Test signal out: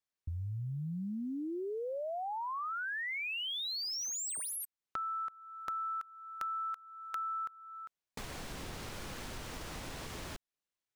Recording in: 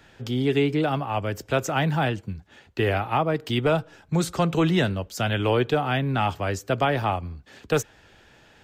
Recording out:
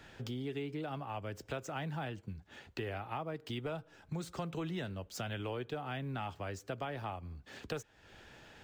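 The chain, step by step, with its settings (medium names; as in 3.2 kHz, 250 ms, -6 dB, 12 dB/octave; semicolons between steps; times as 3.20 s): median filter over 3 samples; compression 3:1, threshold -40 dBFS; short-mantissa float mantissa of 6-bit; trim -2 dB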